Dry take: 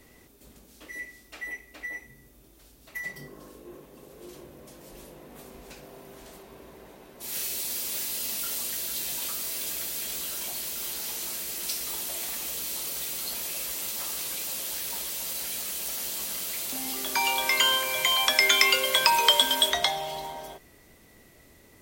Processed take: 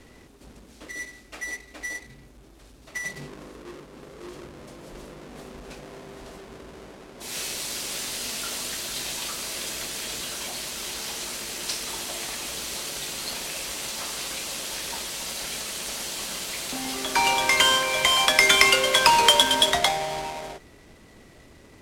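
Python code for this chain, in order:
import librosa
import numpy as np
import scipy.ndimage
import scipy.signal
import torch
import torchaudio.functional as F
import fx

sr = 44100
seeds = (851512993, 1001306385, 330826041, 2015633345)

y = fx.halfwave_hold(x, sr)
y = scipy.signal.sosfilt(scipy.signal.butter(2, 9700.0, 'lowpass', fs=sr, output='sos'), y)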